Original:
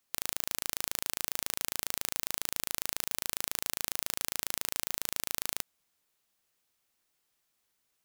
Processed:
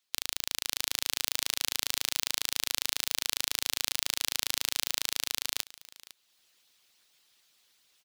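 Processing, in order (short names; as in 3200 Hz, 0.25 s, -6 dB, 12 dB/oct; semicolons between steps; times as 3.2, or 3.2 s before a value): low shelf 93 Hz -7.5 dB; harmonic-percussive split harmonic -16 dB; bell 3800 Hz +11 dB 1.6 oct; AGC gain up to 11.5 dB; on a send: echo 0.505 s -18.5 dB; on the sum: gain -1 dB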